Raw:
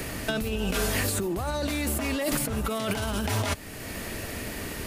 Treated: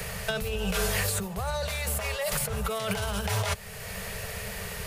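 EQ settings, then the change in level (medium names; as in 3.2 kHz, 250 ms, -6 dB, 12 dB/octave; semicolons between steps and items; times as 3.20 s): elliptic band-stop 200–420 Hz; 0.0 dB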